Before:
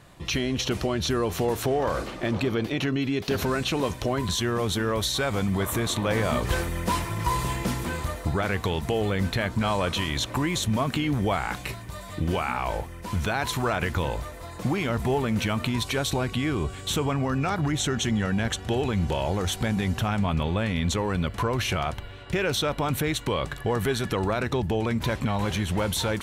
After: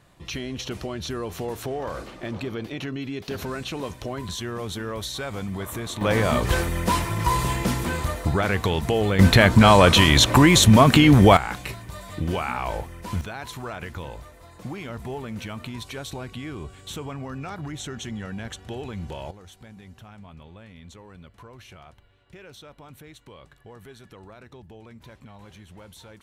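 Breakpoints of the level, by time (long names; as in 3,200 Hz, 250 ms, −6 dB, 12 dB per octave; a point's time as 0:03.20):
−5.5 dB
from 0:06.01 +3.5 dB
from 0:09.19 +12 dB
from 0:11.37 0 dB
from 0:13.21 −8.5 dB
from 0:19.31 −20 dB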